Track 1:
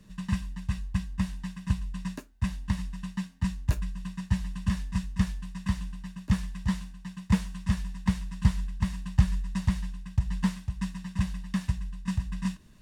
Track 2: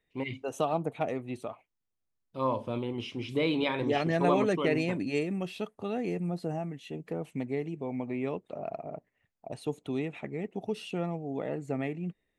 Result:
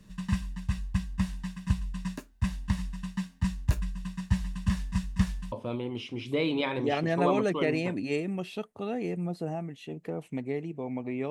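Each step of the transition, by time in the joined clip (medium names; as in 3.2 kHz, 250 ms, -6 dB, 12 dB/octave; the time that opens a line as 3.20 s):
track 1
5.52 s: go over to track 2 from 2.55 s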